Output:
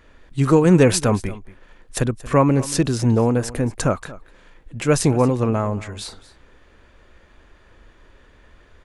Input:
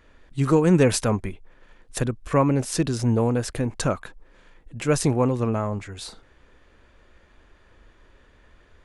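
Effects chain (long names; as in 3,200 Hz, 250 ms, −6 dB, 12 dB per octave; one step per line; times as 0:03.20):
0:03.34–0:03.93: dynamic equaliser 3,700 Hz, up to −6 dB, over −47 dBFS, Q 1.3
single-tap delay 230 ms −18.5 dB
level +4 dB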